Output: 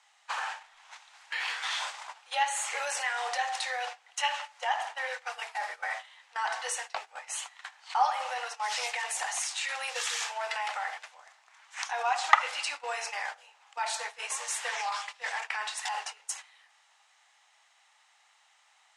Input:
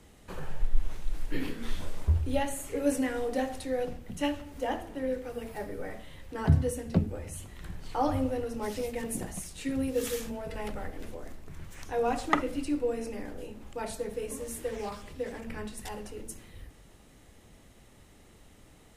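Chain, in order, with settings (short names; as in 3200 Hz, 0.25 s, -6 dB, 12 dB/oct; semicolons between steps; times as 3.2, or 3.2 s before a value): elliptic high-pass 800 Hz, stop band 70 dB; gate -51 dBFS, range -15 dB; LPF 7700 Hz 24 dB/oct; in parallel at -1 dB: negative-ratio compressor -47 dBFS, ratio -0.5; on the sum: gain +7 dB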